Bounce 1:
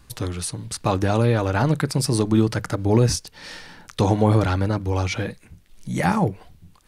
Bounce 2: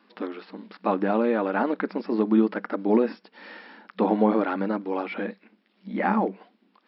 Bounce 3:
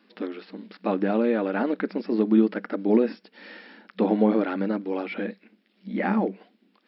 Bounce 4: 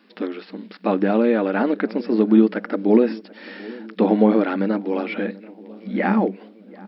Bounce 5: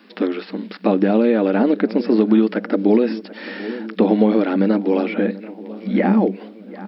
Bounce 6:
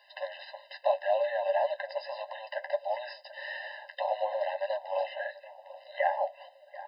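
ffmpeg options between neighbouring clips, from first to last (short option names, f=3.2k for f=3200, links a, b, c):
-filter_complex "[0:a]bass=f=250:g=2,treble=f=4k:g=-12,acrossover=split=2700[a][b];[b]acompressor=threshold=-53dB:ratio=4:attack=1:release=60[c];[a][c]amix=inputs=2:normalize=0,afftfilt=real='re*between(b*sr/4096,190,5500)':imag='im*between(b*sr/4096,190,5500)':win_size=4096:overlap=0.75,volume=-1.5dB"
-af "equalizer=f=1k:t=o:w=1:g=-8.5,volume=1.5dB"
-filter_complex "[0:a]asplit=2[a][b];[b]adelay=736,lowpass=f=1.1k:p=1,volume=-20dB,asplit=2[c][d];[d]adelay=736,lowpass=f=1.1k:p=1,volume=0.55,asplit=2[e][f];[f]adelay=736,lowpass=f=1.1k:p=1,volume=0.55,asplit=2[g][h];[h]adelay=736,lowpass=f=1.1k:p=1,volume=0.55[i];[a][c][e][g][i]amix=inputs=5:normalize=0,volume=5dB"
-filter_complex "[0:a]acrossover=split=700|2400[a][b][c];[a]acompressor=threshold=-19dB:ratio=4[d];[b]acompressor=threshold=-39dB:ratio=4[e];[c]acompressor=threshold=-45dB:ratio=4[f];[d][e][f]amix=inputs=3:normalize=0,volume=7dB"
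-af "flanger=delay=9.4:depth=3.6:regen=-45:speed=1.7:shape=triangular,afftfilt=real='re*eq(mod(floor(b*sr/1024/520),2),1)':imag='im*eq(mod(floor(b*sr/1024/520),2),1)':win_size=1024:overlap=0.75"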